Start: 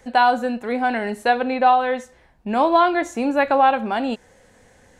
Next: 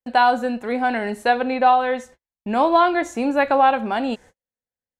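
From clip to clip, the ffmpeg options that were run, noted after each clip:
-af "agate=range=-46dB:threshold=-42dB:ratio=16:detection=peak"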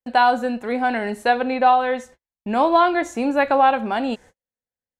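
-af anull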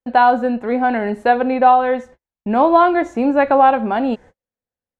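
-af "lowpass=f=1.2k:p=1,volume=5.5dB"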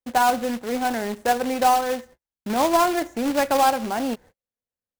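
-af "acrusher=bits=2:mode=log:mix=0:aa=0.000001,volume=-7.5dB"

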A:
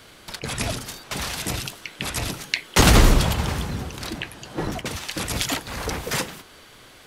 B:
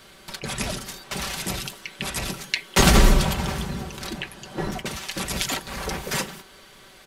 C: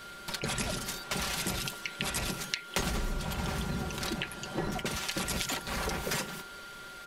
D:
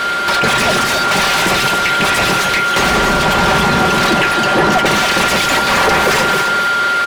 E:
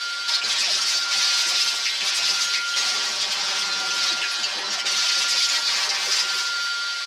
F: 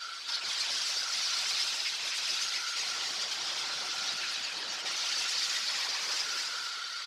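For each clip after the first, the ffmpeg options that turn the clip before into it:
-af "aecho=1:1:5.2:0.53,volume=-2dB"
-af "acompressor=threshold=-29dB:ratio=12,aeval=exprs='val(0)+0.00501*sin(2*PI*1400*n/s)':c=same"
-filter_complex "[0:a]asplit=2[a][b];[b]highpass=f=720:p=1,volume=32dB,asoftclip=type=tanh:threshold=-11.5dB[c];[a][c]amix=inputs=2:normalize=0,lowpass=f=1.9k:p=1,volume=-6dB,asplit=2[d][e];[e]aecho=0:1:270:0.447[f];[d][f]amix=inputs=2:normalize=0,volume=9dB"
-filter_complex "[0:a]bandpass=f=5.1k:t=q:w=2.7:csg=0,asplit=2[a][b];[b]adelay=8.8,afreqshift=-0.76[c];[a][c]amix=inputs=2:normalize=1,volume=6.5dB"
-af "aecho=1:1:129|189|258:0.376|0.335|0.596,afftfilt=real='hypot(re,im)*cos(2*PI*random(0))':imag='hypot(re,im)*sin(2*PI*random(1))':win_size=512:overlap=0.75,volume=-6.5dB"

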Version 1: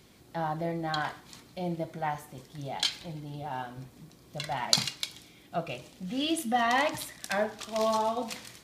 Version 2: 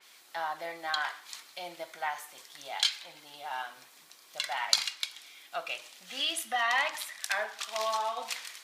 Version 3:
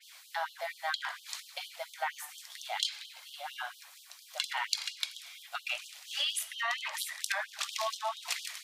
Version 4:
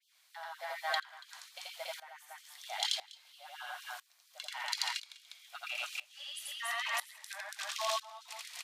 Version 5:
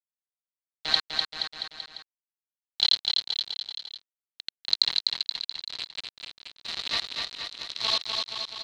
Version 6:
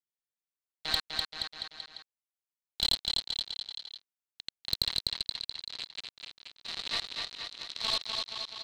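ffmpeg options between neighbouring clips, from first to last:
-filter_complex "[0:a]highpass=1.2k,asplit=2[a][b];[b]acompressor=threshold=-37dB:ratio=6,volume=1dB[c];[a][c]amix=inputs=2:normalize=0,adynamicequalizer=threshold=0.00631:dfrequency=3500:dqfactor=0.7:tfrequency=3500:tqfactor=0.7:attack=5:release=100:ratio=0.375:range=3.5:mode=cutabove:tftype=highshelf"
-af "acompressor=threshold=-31dB:ratio=8,afftfilt=real='re*gte(b*sr/1024,500*pow(2900/500,0.5+0.5*sin(2*PI*4.3*pts/sr)))':imag='im*gte(b*sr/1024,500*pow(2900/500,0.5+0.5*sin(2*PI*4.3*pts/sr)))':win_size=1024:overlap=0.75,volume=3dB"
-filter_complex "[0:a]aecho=1:1:84.55|282.8:0.891|0.631,acrossover=split=1100|2000|6300[a][b][c][d];[b]volume=31.5dB,asoftclip=hard,volume=-31.5dB[e];[a][e][c][d]amix=inputs=4:normalize=0,aeval=exprs='val(0)*pow(10,-21*if(lt(mod(-1*n/s,1),2*abs(-1)/1000),1-mod(-1*n/s,1)/(2*abs(-1)/1000),(mod(-1*n/s,1)-2*abs(-1)/1000)/(1-2*abs(-1)/1000))/20)':c=same"
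-filter_complex "[0:a]acrusher=bits=4:mix=0:aa=0.000001,lowpass=f=4.1k:t=q:w=7.6,asplit=2[a][b];[b]aecho=0:1:250|475|677.5|859.8|1024:0.631|0.398|0.251|0.158|0.1[c];[a][c]amix=inputs=2:normalize=0"
-af "aeval=exprs='(tanh(4.47*val(0)+0.4)-tanh(0.4))/4.47':c=same,volume=-3dB"

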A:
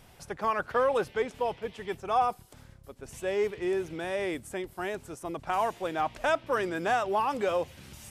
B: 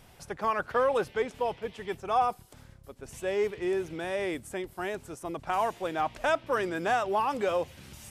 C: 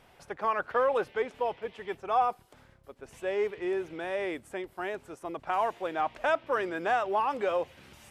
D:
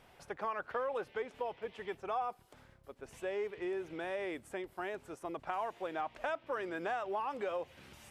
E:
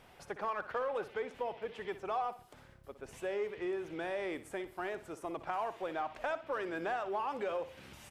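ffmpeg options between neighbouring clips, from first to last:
-af anull
-af "bass=f=250:g=-9,treble=f=4k:g=-10"
-af "acompressor=threshold=-34dB:ratio=2.5,volume=-2.5dB"
-filter_complex "[0:a]asplit=2[a][b];[b]asoftclip=type=tanh:threshold=-39.5dB,volume=-7dB[c];[a][c]amix=inputs=2:normalize=0,aecho=1:1:61|122|183|244:0.2|0.0758|0.0288|0.0109,volume=-1dB"

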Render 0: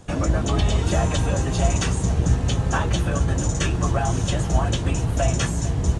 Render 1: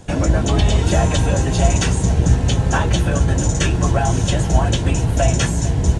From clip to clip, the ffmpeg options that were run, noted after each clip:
-af "bandreject=f=1.2k:w=7,volume=5dB"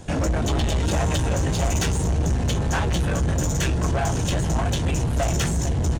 -filter_complex "[0:a]asoftclip=type=tanh:threshold=-19dB,asplit=2[a][b];[b]adelay=13,volume=-12dB[c];[a][c]amix=inputs=2:normalize=0"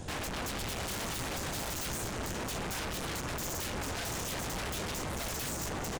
-af "aecho=1:1:532:0.126,aeval=exprs='0.0316*(abs(mod(val(0)/0.0316+3,4)-2)-1)':c=same,volume=-1.5dB"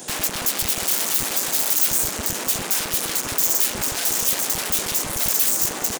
-filter_complex "[0:a]aemphasis=mode=production:type=75kf,acrossover=split=190|1200|2100[a][b][c][d];[a]acrusher=bits=5:mix=0:aa=0.000001[e];[e][b][c][d]amix=inputs=4:normalize=0,volume=6dB"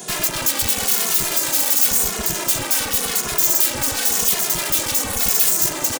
-filter_complex "[0:a]asplit=2[a][b];[b]adelay=2.4,afreqshift=-0.92[c];[a][c]amix=inputs=2:normalize=1,volume=6dB"

